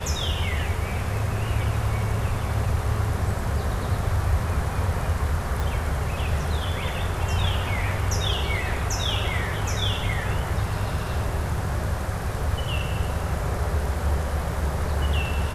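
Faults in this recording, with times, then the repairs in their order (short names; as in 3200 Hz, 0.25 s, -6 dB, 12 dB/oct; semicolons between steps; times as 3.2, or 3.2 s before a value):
5.6 pop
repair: de-click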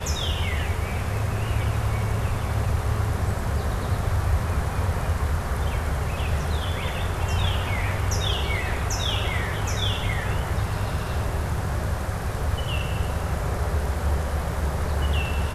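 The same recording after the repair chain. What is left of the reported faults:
5.6 pop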